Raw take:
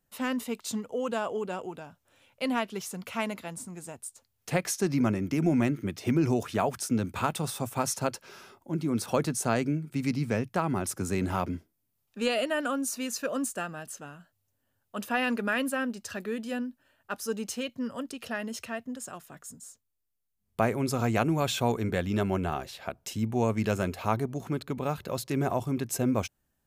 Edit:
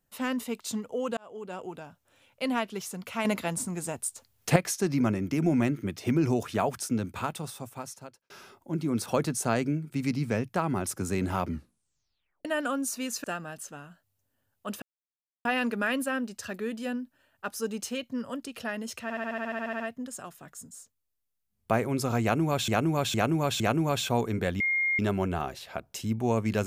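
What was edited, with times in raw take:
1.17–1.73 s: fade in
3.25–4.56 s: gain +8 dB
6.72–8.30 s: fade out
11.45 s: tape stop 1.00 s
13.24–13.53 s: delete
15.11 s: insert silence 0.63 s
18.69 s: stutter 0.07 s, 12 plays
21.11–21.57 s: loop, 4 plays
22.11 s: add tone 2.13 kHz -23.5 dBFS 0.39 s

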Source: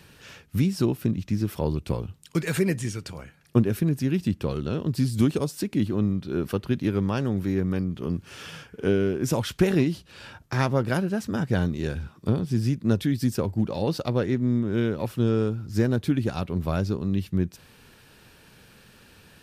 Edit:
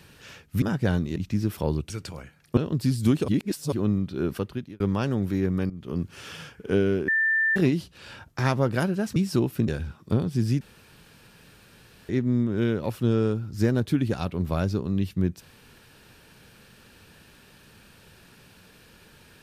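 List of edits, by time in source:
0.62–1.14 s: swap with 11.30–11.84 s
1.88–2.91 s: delete
3.58–4.71 s: delete
5.42–5.86 s: reverse
6.43–6.94 s: fade out
7.84–8.14 s: fade in, from -14.5 dB
9.22–9.70 s: bleep 1.78 kHz -19.5 dBFS
12.77–14.25 s: room tone

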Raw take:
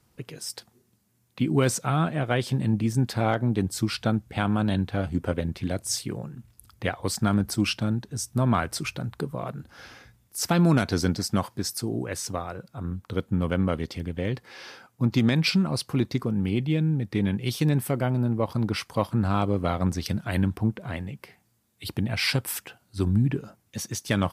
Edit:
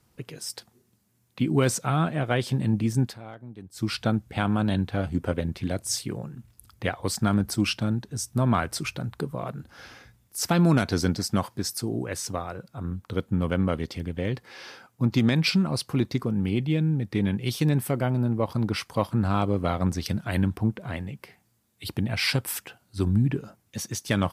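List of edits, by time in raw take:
3.03–3.88 s: dip -18 dB, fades 0.15 s

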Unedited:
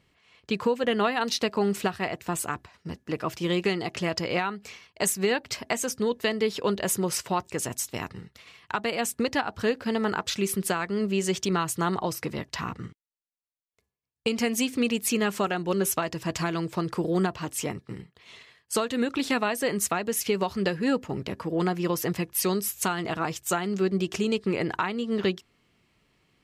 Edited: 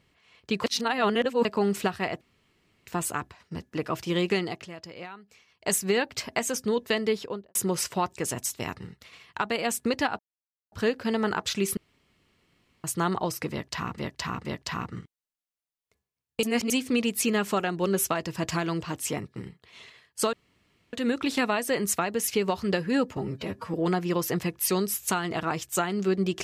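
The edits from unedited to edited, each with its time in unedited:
0.64–1.45 s: reverse
2.21 s: insert room tone 0.66 s
3.77–5.06 s: dip -14 dB, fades 0.25 s
6.39–6.89 s: studio fade out
9.53 s: insert silence 0.53 s
10.58–11.65 s: room tone
12.32–12.79 s: loop, 3 plays
14.30–14.57 s: reverse
16.69–17.35 s: delete
18.86 s: insert room tone 0.60 s
21.10–21.48 s: stretch 1.5×

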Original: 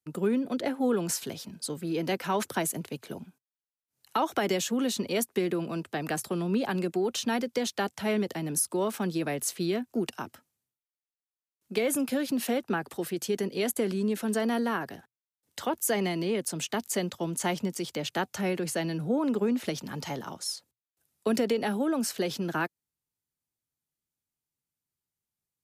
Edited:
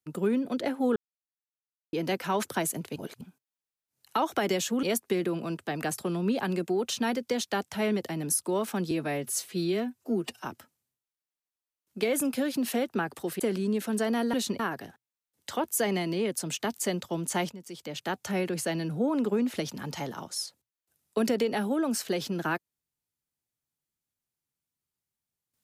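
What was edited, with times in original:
0.96–1.93 s: mute
2.96–3.21 s: reverse
4.83–5.09 s: move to 14.69 s
9.17–10.20 s: stretch 1.5×
13.14–13.75 s: delete
17.61–18.41 s: fade in, from -16 dB

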